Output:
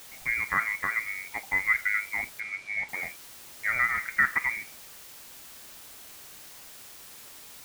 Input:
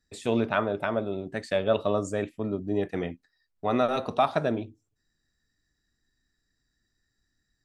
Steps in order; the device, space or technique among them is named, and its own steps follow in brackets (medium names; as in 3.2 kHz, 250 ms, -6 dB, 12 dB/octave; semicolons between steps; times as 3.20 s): scrambled radio voice (band-pass 390–3000 Hz; frequency inversion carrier 2.6 kHz; white noise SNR 15 dB); 2.40–2.89 s: distance through air 80 m